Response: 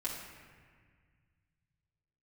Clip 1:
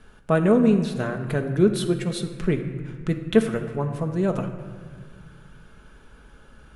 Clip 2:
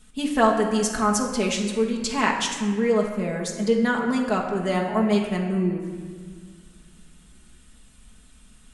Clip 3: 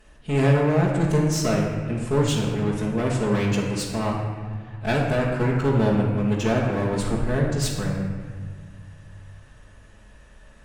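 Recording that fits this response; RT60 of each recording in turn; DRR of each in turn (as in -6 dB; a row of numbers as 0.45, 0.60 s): 3; 1.7, 1.7, 1.7 s; 4.0, -1.5, -7.5 dB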